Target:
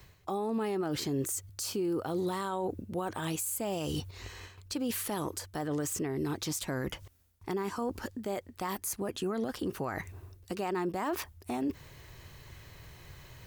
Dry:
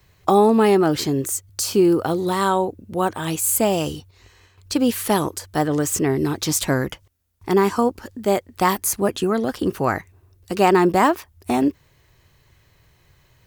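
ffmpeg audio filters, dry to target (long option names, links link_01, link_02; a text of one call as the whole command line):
ffmpeg -i in.wav -af "areverse,acompressor=threshold=-32dB:ratio=6,areverse,alimiter=level_in=7dB:limit=-24dB:level=0:latency=1:release=88,volume=-7dB,volume=6dB" out.wav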